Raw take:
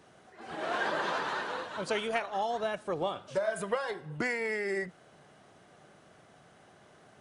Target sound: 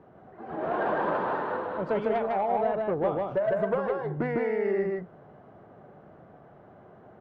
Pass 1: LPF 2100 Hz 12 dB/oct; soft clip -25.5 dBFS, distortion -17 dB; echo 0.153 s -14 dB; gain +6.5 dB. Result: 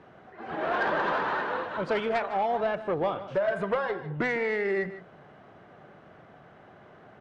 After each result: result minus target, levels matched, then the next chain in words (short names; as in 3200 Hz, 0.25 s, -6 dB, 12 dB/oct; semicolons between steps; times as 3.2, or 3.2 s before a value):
echo-to-direct -12 dB; 2000 Hz band +7.0 dB
LPF 2100 Hz 12 dB/oct; soft clip -25.5 dBFS, distortion -17 dB; echo 0.153 s -2 dB; gain +6.5 dB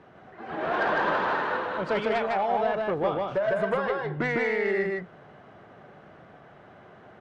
2000 Hz band +7.0 dB
LPF 930 Hz 12 dB/oct; soft clip -25.5 dBFS, distortion -19 dB; echo 0.153 s -2 dB; gain +6.5 dB